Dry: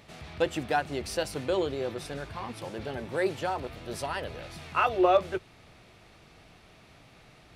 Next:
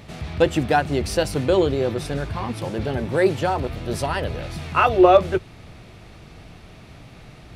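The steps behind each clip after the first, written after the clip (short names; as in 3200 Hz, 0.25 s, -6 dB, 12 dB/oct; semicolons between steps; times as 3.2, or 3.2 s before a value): low shelf 290 Hz +9 dB; gain +7 dB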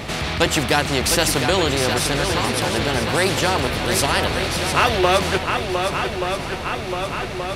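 swung echo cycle 1.178 s, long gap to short 1.5:1, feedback 44%, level -11 dB; spectral compressor 2:1; gain -1 dB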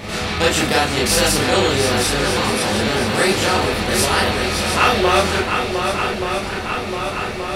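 reverb RT60 0.20 s, pre-delay 26 ms, DRR -4 dB; gain -3 dB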